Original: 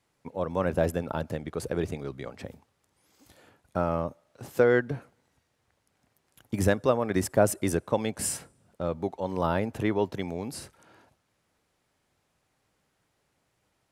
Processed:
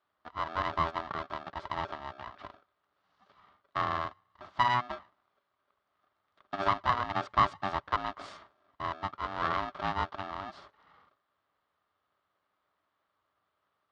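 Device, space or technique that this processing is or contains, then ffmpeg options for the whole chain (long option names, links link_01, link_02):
ring modulator pedal into a guitar cabinet: -af "aeval=exprs='val(0)*sgn(sin(2*PI*490*n/s))':channel_layout=same,highpass=81,equalizer=frequency=140:width_type=q:width=4:gain=-7,equalizer=frequency=230:width_type=q:width=4:gain=-7,equalizer=frequency=360:width_type=q:width=4:gain=-8,equalizer=frequency=1200:width_type=q:width=4:gain=10,equalizer=frequency=2500:width_type=q:width=4:gain=-7,lowpass=frequency=3800:width=0.5412,lowpass=frequency=3800:width=1.3066,volume=-6dB"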